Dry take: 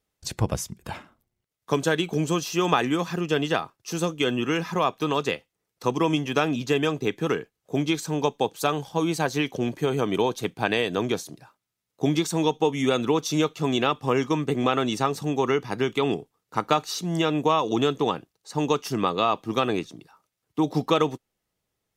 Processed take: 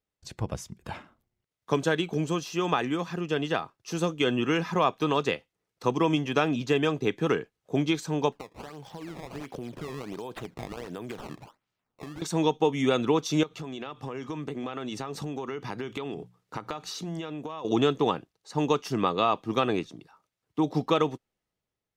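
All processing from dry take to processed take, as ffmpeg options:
ffmpeg -i in.wav -filter_complex "[0:a]asettb=1/sr,asplit=3[link_01][link_02][link_03];[link_01]atrim=end=8.324[link_04];[link_02]atrim=start=8.32:end=12.22,asetpts=PTS-STARTPTS,afade=type=in:duration=0.004:curve=qsin,afade=type=out:start_time=3.896:duration=0.004:curve=qsin,acompressor=threshold=-36dB:ratio=10:attack=3.2:release=140:knee=1:detection=peak,acrusher=samples=17:mix=1:aa=0.000001:lfo=1:lforange=27.2:lforate=1.4[link_05];[link_03]atrim=start=12.216[link_06];[link_04][link_05]acrossfade=duration=0.004:curve1=hsin:curve2=qsin[link_07];[link_07][link_06]acrossfade=duration=0.004:curve1=qsin:curve2=hsin,asettb=1/sr,asplit=3[link_08][link_09][link_10];[link_08]atrim=end=13.434[link_11];[link_09]atrim=start=13.43:end=17.65,asetpts=PTS-STARTPTS,afade=type=in:duration=0.004:curve=qsin,afade=type=out:start_time=4.216:duration=0.004:curve=qsin,bandreject=frequency=60:width_type=h:width=6,bandreject=frequency=120:width_type=h:width=6,bandreject=frequency=180:width_type=h:width=6,acompressor=threshold=-33dB:ratio=10:attack=3.2:release=140:knee=1:detection=peak[link_12];[link_10]atrim=start=17.646[link_13];[link_11][link_12]acrossfade=duration=0.004:curve1=hsin:curve2=qsin[link_14];[link_14][link_13]acrossfade=duration=0.004:curve1=qsin:curve2=hsin,highshelf=frequency=8200:gain=-11,dynaudnorm=framelen=210:gausssize=7:maxgain=11.5dB,volume=-8.5dB" out.wav

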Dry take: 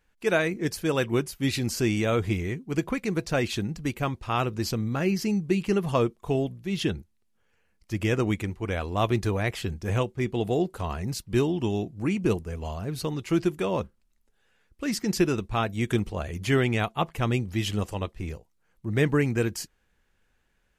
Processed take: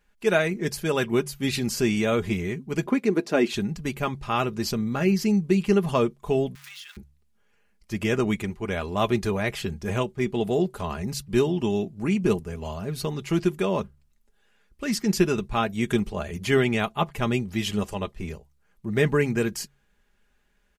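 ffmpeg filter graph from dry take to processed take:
ffmpeg -i in.wav -filter_complex "[0:a]asettb=1/sr,asplit=3[link_01][link_02][link_03];[link_01]atrim=end=2.864[link_04];[link_02]atrim=start=2.86:end=3.54,asetpts=PTS-STARTPTS,afade=type=in:duration=0.004:curve=qsin,afade=type=out:start_time=0.676:duration=0.004:curve=qsin,highpass=frequency=290:width_type=q:width=2.7,highshelf=frequency=3800:gain=-5.5[link_05];[link_03]atrim=start=3.536[link_06];[link_04][link_05]acrossfade=duration=0.004:curve1=hsin:curve2=qsin[link_07];[link_07][link_06]acrossfade=duration=0.004:curve1=qsin:curve2=hsin,asettb=1/sr,asplit=3[link_08][link_09][link_10];[link_08]atrim=end=6.554[link_11];[link_09]atrim=start=6.55:end=6.97,asetpts=PTS-STARTPTS,afade=type=in:duration=0.004:curve=qsin,afade=type=out:start_time=0.416:duration=0.004:curve=qsin,aeval=exprs='val(0)+0.5*0.0211*sgn(val(0))':channel_layout=same,highpass=frequency=1400:width=0.5412,highpass=frequency=1400:width=1.3066,acompressor=threshold=-40dB:ratio=12:attack=3.2:release=140:knee=1:detection=peak[link_12];[link_10]atrim=start=6.966[link_13];[link_11][link_12]acrossfade=duration=0.004:curve1=hsin:curve2=qsin[link_14];[link_14][link_13]acrossfade=duration=0.004:curve1=qsin:curve2=hsin,aecho=1:1:4.9:0.48,bandreject=frequency=69.94:width_type=h:width=4,bandreject=frequency=139.88:width_type=h:width=4,volume=1dB" out.wav

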